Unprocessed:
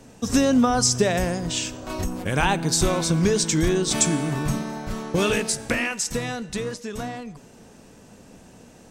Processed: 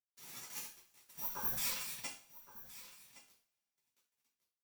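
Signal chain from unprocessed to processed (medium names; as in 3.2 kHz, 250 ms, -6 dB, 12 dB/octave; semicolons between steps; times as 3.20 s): Doppler pass-by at 2.81 s, 17 m/s, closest 3.2 m; RIAA curve recording; spectral selection erased 2.16–3.03 s, 870–6400 Hz; peaking EQ 730 Hz +12 dB 0.23 oct; spectral gate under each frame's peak -30 dB weak; waveshaping leveller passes 1; whistle 3 kHz -57 dBFS; flange 0.69 Hz, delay 4.7 ms, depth 8 ms, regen +77%; small samples zeroed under -54.5 dBFS; wide varispeed 1.92×; on a send: delay 1117 ms -16 dB; on the sum: two-slope reverb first 0.38 s, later 1.9 s, from -27 dB, DRR -7.5 dB; trim +5.5 dB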